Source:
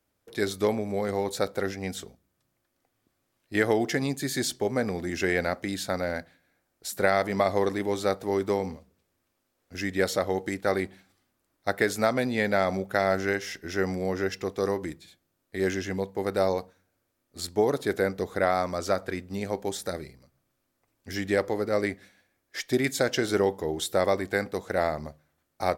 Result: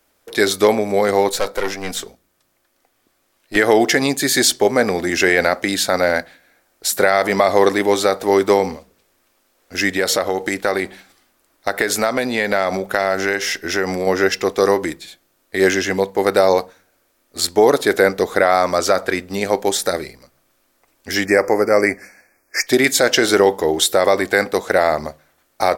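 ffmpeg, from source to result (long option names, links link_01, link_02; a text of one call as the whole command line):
ffmpeg -i in.wav -filter_complex "[0:a]asettb=1/sr,asplit=3[link_01][link_02][link_03];[link_01]atrim=end=1.294[link_04];[link_02]atrim=start=1.29:end=3.56,asetpts=PTS-STARTPTS,afade=type=in:duration=0.004:curve=qsin,afade=type=out:start_time=2.266:duration=0.004:curve=qsin,aeval=exprs='(tanh(22.4*val(0)+0.55)-tanh(0.55))/22.4':channel_layout=same[link_05];[link_03]atrim=start=3.556[link_06];[link_04][link_05]acrossfade=duration=0.004:curve1=hsin:curve2=qsin[link_07];[link_07][link_06]acrossfade=duration=0.004:curve1=qsin:curve2=hsin,asettb=1/sr,asplit=3[link_08][link_09][link_10];[link_08]atrim=end=9.944[link_11];[link_09]atrim=start=9.94:end=14.07,asetpts=PTS-STARTPTS,afade=type=in:duration=0.004:curve=qsin,afade=type=out:start_time=4.126:duration=0.004:curve=qsin,acompressor=threshold=-27dB:ratio=4:attack=3.2:release=140:knee=1:detection=peak[link_12];[link_10]atrim=start=14.066[link_13];[link_11][link_12]acrossfade=duration=0.004:curve1=hsin:curve2=qsin[link_14];[link_14][link_13]acrossfade=duration=0.004:curve1=qsin:curve2=hsin,asettb=1/sr,asplit=3[link_15][link_16][link_17];[link_15]atrim=end=21.254[link_18];[link_16]atrim=start=21.25:end=22.67,asetpts=PTS-STARTPTS,afade=type=in:duration=0.004:curve=qsin,afade=type=out:start_time=1.416:duration=0.004:curve=qsin,asuperstop=centerf=3400:order=12:qfactor=1.7[link_19];[link_17]atrim=start=22.666[link_20];[link_18][link_19]acrossfade=duration=0.004:curve1=hsin:curve2=qsin[link_21];[link_21][link_20]acrossfade=duration=0.004:curve1=qsin:curve2=hsin,equalizer=frequency=110:width_type=o:width=2.3:gain=-13,alimiter=level_in=16.5dB:limit=-1dB:release=50:level=0:latency=1,volume=-1dB" out.wav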